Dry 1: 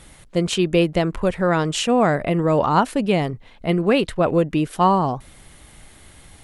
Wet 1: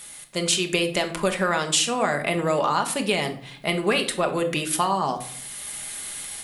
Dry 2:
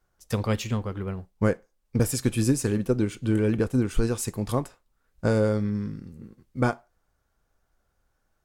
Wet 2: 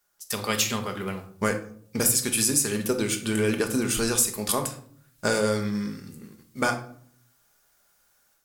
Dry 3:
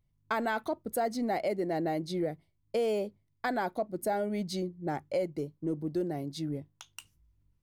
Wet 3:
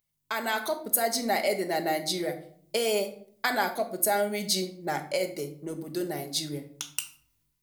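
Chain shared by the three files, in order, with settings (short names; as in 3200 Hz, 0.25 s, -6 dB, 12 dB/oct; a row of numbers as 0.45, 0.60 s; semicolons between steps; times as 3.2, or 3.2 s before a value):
AGC gain up to 7.5 dB; tilt +4 dB/oct; compressor, threshold -17 dBFS; shoebox room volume 770 m³, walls furnished, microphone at 1.3 m; gain -2.5 dB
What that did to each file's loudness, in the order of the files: -4.0, +1.5, +4.0 LU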